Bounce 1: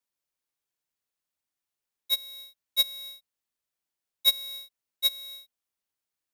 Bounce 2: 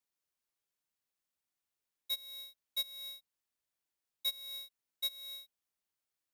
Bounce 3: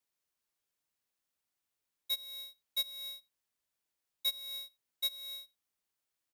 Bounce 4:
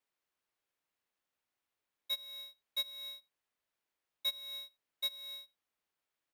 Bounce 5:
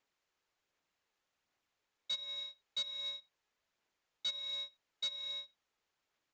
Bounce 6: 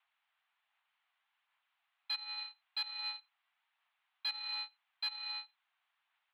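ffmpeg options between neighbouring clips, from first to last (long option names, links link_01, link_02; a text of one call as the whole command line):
ffmpeg -i in.wav -af "acompressor=threshold=-35dB:ratio=3,volume=-2.5dB" out.wav
ffmpeg -i in.wav -filter_complex "[0:a]asplit=2[link_01][link_02];[link_02]adelay=87.46,volume=-25dB,highshelf=frequency=4000:gain=-1.97[link_03];[link_01][link_03]amix=inputs=2:normalize=0,volume=2dB" out.wav
ffmpeg -i in.wav -af "bass=frequency=250:gain=-5,treble=frequency=4000:gain=-10,volume=3dB" out.wav
ffmpeg -i in.wav -af "aphaser=in_gain=1:out_gain=1:delay=2.4:decay=0.24:speed=1.3:type=sinusoidal,aresample=16000,asoftclip=type=tanh:threshold=-38dB,aresample=44100,volume=5dB" out.wav
ffmpeg -i in.wav -af "aeval=exprs='0.0335*(cos(1*acos(clip(val(0)/0.0335,-1,1)))-cos(1*PI/2))+0.00422*(cos(3*acos(clip(val(0)/0.0335,-1,1)))-cos(3*PI/2))+0.00531*(cos(4*acos(clip(val(0)/0.0335,-1,1)))-cos(4*PI/2))+0.00376*(cos(5*acos(clip(val(0)/0.0335,-1,1)))-cos(5*PI/2))+0.00299*(cos(7*acos(clip(val(0)/0.0335,-1,1)))-cos(7*PI/2))':channel_layout=same,highpass=frequency=490:width_type=q:width=0.5412,highpass=frequency=490:width_type=q:width=1.307,lowpass=frequency=3300:width_type=q:width=0.5176,lowpass=frequency=3300:width_type=q:width=0.7071,lowpass=frequency=3300:width_type=q:width=1.932,afreqshift=270,asoftclip=type=tanh:threshold=-34.5dB,volume=10dB" out.wav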